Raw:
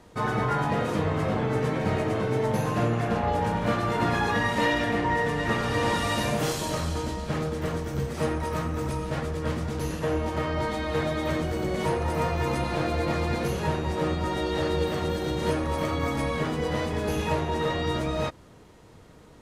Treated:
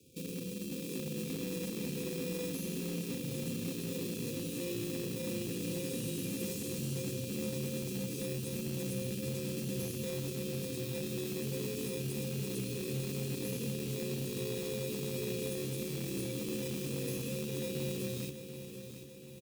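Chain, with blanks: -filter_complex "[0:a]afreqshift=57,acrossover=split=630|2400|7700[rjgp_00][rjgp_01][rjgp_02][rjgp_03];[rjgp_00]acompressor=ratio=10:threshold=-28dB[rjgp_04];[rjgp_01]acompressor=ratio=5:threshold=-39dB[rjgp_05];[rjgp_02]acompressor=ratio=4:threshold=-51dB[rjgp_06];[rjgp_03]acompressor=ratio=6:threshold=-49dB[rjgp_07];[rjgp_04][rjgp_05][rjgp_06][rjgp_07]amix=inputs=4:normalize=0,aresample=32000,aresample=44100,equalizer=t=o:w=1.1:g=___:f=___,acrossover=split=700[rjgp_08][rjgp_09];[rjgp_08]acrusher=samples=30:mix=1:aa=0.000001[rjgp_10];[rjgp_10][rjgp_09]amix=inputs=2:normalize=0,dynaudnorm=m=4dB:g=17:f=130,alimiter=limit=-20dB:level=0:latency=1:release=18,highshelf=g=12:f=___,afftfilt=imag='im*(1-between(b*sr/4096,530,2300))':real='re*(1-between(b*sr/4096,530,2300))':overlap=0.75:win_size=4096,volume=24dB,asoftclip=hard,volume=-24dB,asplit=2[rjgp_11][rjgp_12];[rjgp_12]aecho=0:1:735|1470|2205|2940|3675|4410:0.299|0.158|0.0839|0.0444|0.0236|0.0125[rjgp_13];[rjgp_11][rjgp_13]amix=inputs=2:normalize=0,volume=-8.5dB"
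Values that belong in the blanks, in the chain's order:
-4, 3000, 7200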